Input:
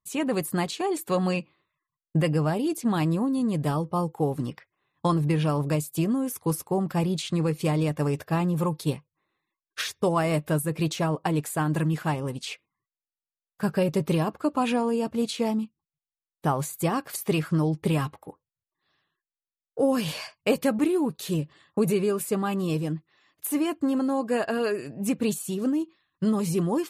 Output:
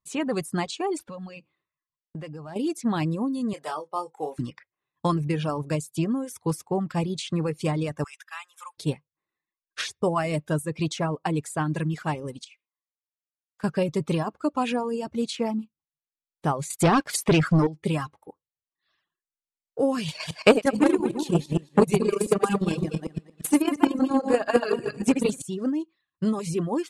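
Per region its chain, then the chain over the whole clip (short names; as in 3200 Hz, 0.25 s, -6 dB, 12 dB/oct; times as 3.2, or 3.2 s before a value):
0.99–2.56 median filter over 5 samples + compressor 4:1, threshold -35 dBFS
3.53–4.39 HPF 550 Hz + doubler 26 ms -7.5 dB
8.04–8.78 HPF 1300 Hz 24 dB/oct + notch 4400 Hz, Q 5
12.44–13.64 HPF 1200 Hz 6 dB/oct + compressor 10:1, threshold -46 dBFS
16.7–17.67 high shelf 8900 Hz -3.5 dB + sample leveller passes 3
20.08–25.42 regenerating reverse delay 0.115 s, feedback 55%, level -1 dB + transient shaper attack +11 dB, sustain -6 dB + core saturation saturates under 660 Hz
whole clip: reverb removal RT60 1 s; LPF 9600 Hz 24 dB/oct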